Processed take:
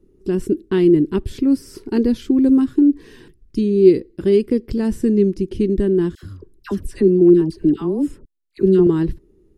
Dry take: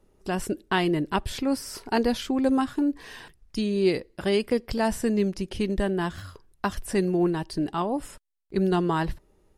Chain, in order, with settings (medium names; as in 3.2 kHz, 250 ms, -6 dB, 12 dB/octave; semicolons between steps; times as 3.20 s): resonant low shelf 500 Hz +11 dB, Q 3; 6.15–8.87 s: phase dispersion lows, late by 77 ms, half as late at 1.1 kHz; trim -5 dB